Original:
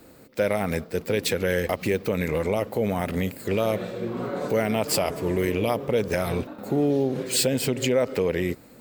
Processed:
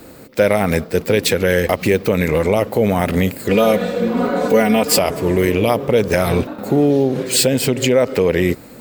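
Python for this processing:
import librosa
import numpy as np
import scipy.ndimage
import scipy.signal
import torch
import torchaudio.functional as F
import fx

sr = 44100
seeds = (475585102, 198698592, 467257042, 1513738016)

p1 = fx.comb(x, sr, ms=4.1, depth=0.86, at=(3.49, 4.99))
p2 = fx.rider(p1, sr, range_db=5, speed_s=0.5)
p3 = p1 + (p2 * 10.0 ** (1.0 / 20.0))
y = p3 * 10.0 ** (2.0 / 20.0)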